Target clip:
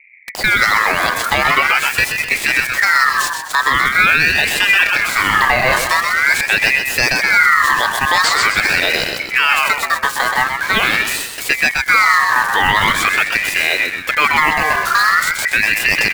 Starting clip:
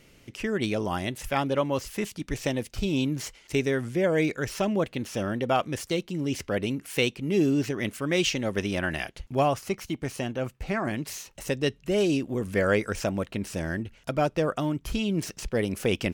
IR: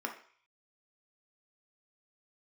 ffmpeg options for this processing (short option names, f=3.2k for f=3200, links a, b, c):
-filter_complex "[0:a]bandreject=f=50:t=h:w=6,bandreject=f=100:t=h:w=6,bandreject=f=150:t=h:w=6,bandreject=f=200:t=h:w=6,bandreject=f=250:t=h:w=6,bandreject=f=300:t=h:w=6,bandreject=f=350:t=h:w=6,acrossover=split=270[a][b];[b]acrusher=bits=6:mix=0:aa=0.000001[c];[a][c]amix=inputs=2:normalize=0,asettb=1/sr,asplit=3[d][e][f];[d]atrim=end=4.754[g];[e]atrim=start=4.75:end=5.94,asetpts=PTS-STARTPTS,afade=t=in:d=0.004:c=qsin,afade=t=out:st=1.186:d=0.004:c=qsin,asplit=2[h][i];[i]adelay=30,volume=-6.5dB[j];[h][j]amix=inputs=2:normalize=0,atrim=end_sample=52479[k];[f]atrim=start=5.936[l];[g][k]acrossfade=d=0.004:c1=hsin:c2=qsin[m];[m][l]acrossfade=d=0.004:c1=qsin:c2=hsin,asplit=6[n][o][p][q][r][s];[o]adelay=127,afreqshift=50,volume=-7dB[t];[p]adelay=254,afreqshift=100,volume=-13.9dB[u];[q]adelay=381,afreqshift=150,volume=-20.9dB[v];[r]adelay=508,afreqshift=200,volume=-27.8dB[w];[s]adelay=635,afreqshift=250,volume=-34.7dB[x];[n][t][u][v][w][x]amix=inputs=6:normalize=0,alimiter=level_in=17.5dB:limit=-1dB:release=50:level=0:latency=1,aeval=exprs='val(0)*sin(2*PI*1800*n/s+1800*0.25/0.44*sin(2*PI*0.44*n/s))':c=same"